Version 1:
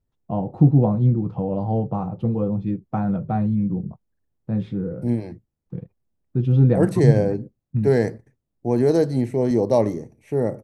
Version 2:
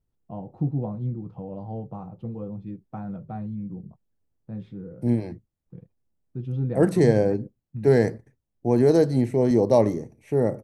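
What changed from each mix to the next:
first voice -11.5 dB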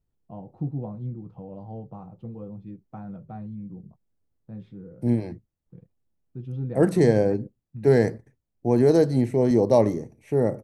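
first voice -4.0 dB

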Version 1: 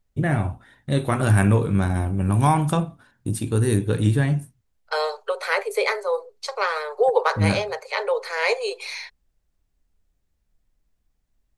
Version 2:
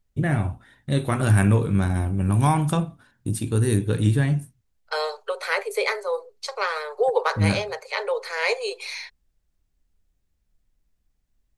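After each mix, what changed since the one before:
master: add peaking EQ 740 Hz -3 dB 2.2 oct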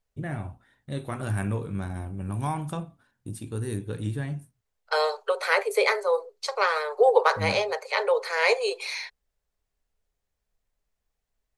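first voice -11.0 dB; master: add peaking EQ 740 Hz +3 dB 2.2 oct

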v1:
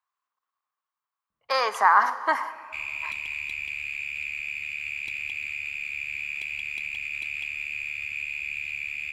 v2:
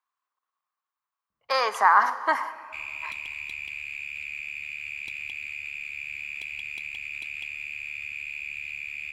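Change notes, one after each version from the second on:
second sound: send off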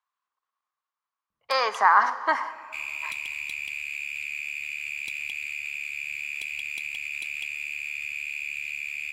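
speech: add distance through air 130 m; second sound: add bass shelf 180 Hz -6.5 dB; master: add peaking EQ 11 kHz +11.5 dB 2 oct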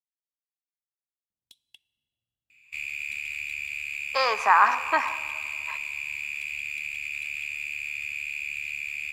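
speech: entry +2.65 s; first sound -10.5 dB; second sound: add bass shelf 180 Hz +6.5 dB

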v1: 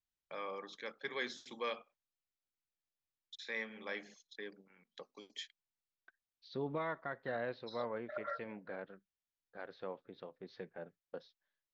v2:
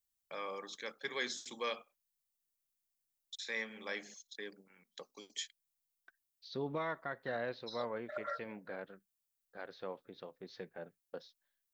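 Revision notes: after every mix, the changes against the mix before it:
master: remove distance through air 160 m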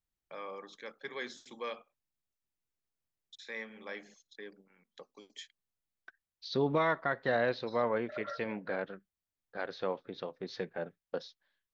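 first voice: add low-pass 2 kHz 6 dB/octave; second voice +9.0 dB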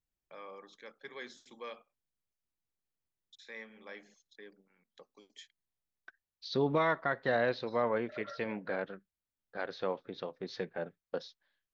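first voice -5.0 dB

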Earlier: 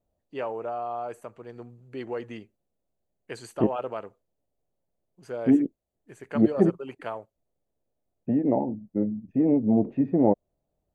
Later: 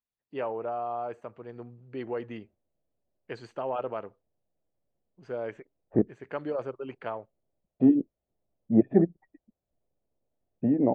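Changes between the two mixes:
second voice: entry +2.35 s; master: add distance through air 190 m

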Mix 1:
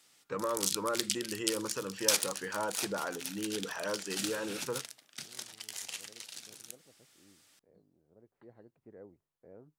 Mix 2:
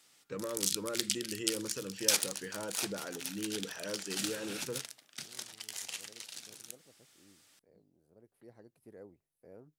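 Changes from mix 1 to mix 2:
first voice: add peaking EQ 1 kHz -13 dB 1.3 oct; second voice: remove low-pass 1.9 kHz

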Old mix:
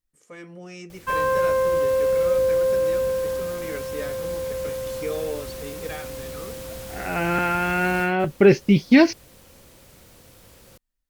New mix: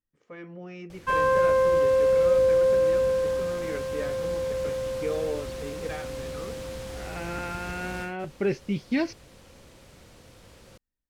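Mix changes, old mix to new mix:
first voice: add distance through air 280 m; second voice -12.0 dB; background: add distance through air 50 m

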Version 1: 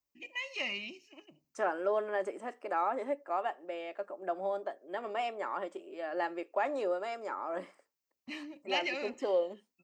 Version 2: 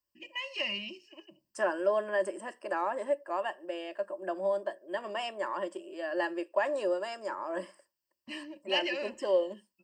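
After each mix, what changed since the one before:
second voice: add treble shelf 6.1 kHz +10.5 dB; master: add rippled EQ curve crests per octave 1.3, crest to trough 11 dB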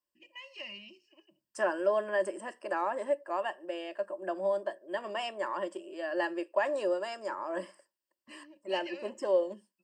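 first voice -10.0 dB

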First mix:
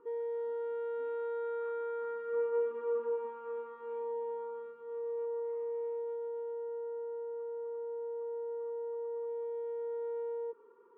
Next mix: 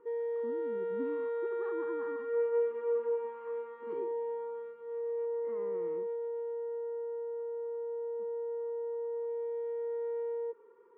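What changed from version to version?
speech: remove band-pass filter 2.4 kHz, Q 4; master: add graphic EQ with 31 bands 250 Hz -4 dB, 500 Hz +3 dB, 1.25 kHz -5 dB, 2 kHz +9 dB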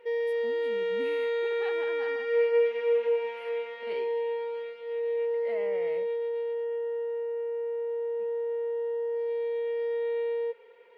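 master: remove FFT filter 220 Hz 0 dB, 350 Hz +10 dB, 660 Hz -25 dB, 1.1 kHz +6 dB, 2.2 kHz -25 dB, 3.9 kHz -29 dB

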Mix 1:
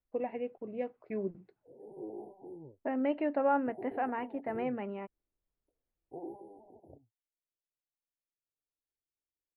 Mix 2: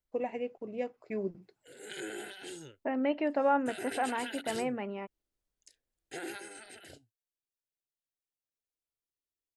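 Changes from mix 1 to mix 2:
background: remove brick-wall FIR band-stop 1–9 kHz; master: remove distance through air 390 m

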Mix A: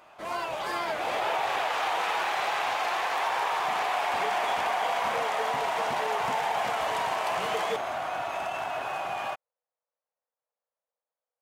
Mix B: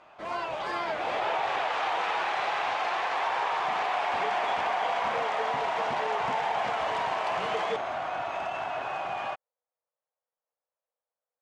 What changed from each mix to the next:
master: add distance through air 100 m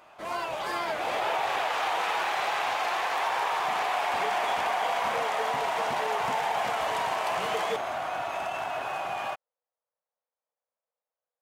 master: remove distance through air 100 m

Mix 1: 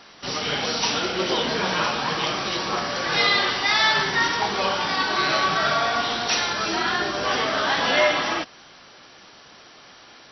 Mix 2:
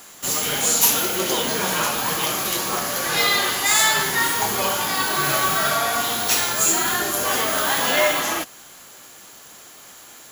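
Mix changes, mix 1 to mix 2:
second voice: add tilt EQ -4 dB/octave; master: remove brick-wall FIR low-pass 5.9 kHz

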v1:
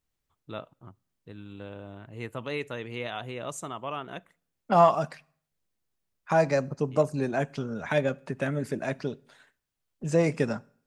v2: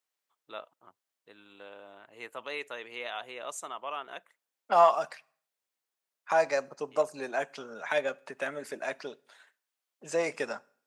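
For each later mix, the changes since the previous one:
first voice: send -11.5 dB; master: add high-pass 590 Hz 12 dB/octave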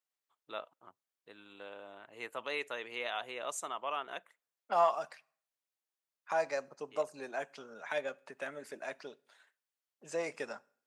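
second voice -7.0 dB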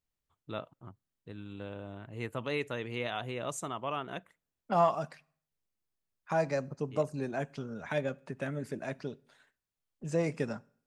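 master: remove high-pass 590 Hz 12 dB/octave

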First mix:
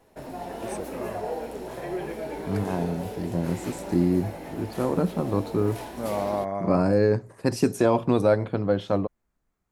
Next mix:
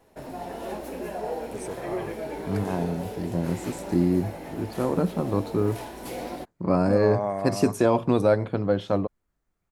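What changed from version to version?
first voice: entry +0.90 s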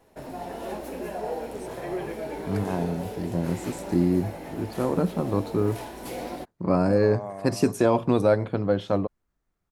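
first voice -8.0 dB

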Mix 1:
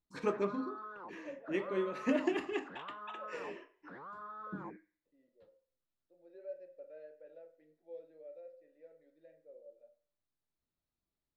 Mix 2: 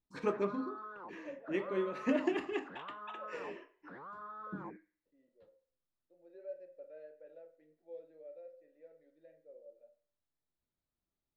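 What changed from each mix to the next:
master: add treble shelf 5.4 kHz -5.5 dB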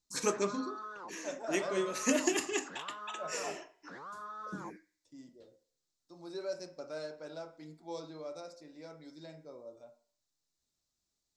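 second voice: remove vowel filter e; master: remove distance through air 490 m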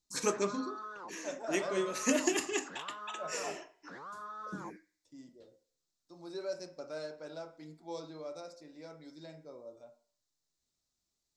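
no change

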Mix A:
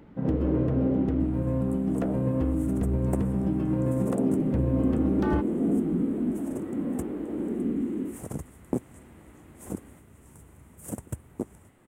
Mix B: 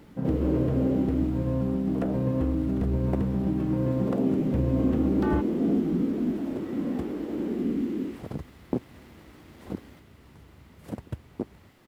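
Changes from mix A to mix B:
speech: remove distance through air 420 m; second sound: add resonant high shelf 6.1 kHz -13.5 dB, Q 3; master: add peaking EQ 6.4 kHz -3.5 dB 0.45 oct

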